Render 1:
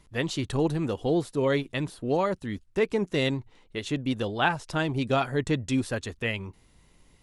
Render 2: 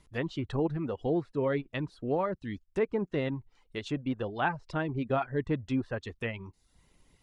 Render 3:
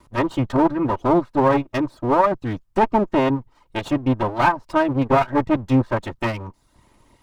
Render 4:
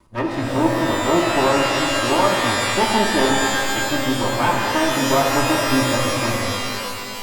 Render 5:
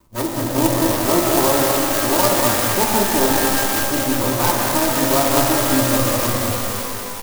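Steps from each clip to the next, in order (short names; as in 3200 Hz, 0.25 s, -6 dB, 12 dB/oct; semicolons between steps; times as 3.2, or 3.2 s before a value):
reverb removal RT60 0.54 s; treble ducked by the level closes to 1800 Hz, closed at -25 dBFS; gain -3.5 dB
minimum comb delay 3.2 ms; ten-band EQ 125 Hz +10 dB, 250 Hz +3 dB, 500 Hz +4 dB, 1000 Hz +11 dB; gain +6.5 dB
shimmer reverb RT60 2.6 s, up +12 st, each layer -2 dB, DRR 0 dB; gain -3.5 dB
echo 0.2 s -4.5 dB; clock jitter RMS 0.11 ms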